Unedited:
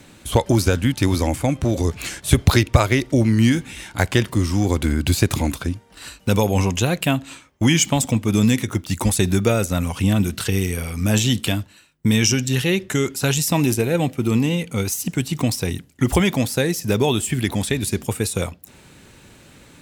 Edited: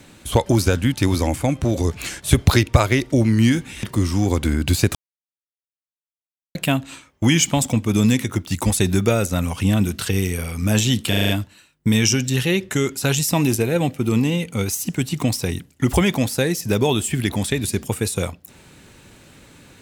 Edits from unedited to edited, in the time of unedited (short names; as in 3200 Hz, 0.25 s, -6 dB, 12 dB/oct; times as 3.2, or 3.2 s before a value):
3.83–4.22 cut
5.34–6.94 mute
11.48 stutter 0.04 s, 6 plays